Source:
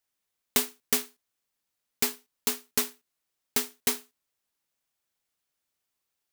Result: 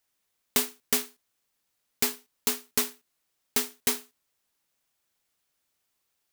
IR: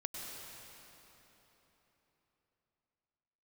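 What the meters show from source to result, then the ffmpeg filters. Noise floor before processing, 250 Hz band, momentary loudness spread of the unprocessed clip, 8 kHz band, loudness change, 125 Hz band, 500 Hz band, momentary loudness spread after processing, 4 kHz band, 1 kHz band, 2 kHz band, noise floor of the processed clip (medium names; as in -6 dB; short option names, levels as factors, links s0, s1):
-83 dBFS, +0.5 dB, 5 LU, +0.5 dB, +0.5 dB, +0.5 dB, +0.5 dB, 4 LU, +0.5 dB, +0.5 dB, +0.5 dB, -78 dBFS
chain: -filter_complex "[0:a]asplit=2[s0][s1];[s1]acompressor=threshold=0.0251:ratio=6,volume=0.794[s2];[s0][s2]amix=inputs=2:normalize=0,asoftclip=type=tanh:threshold=0.224"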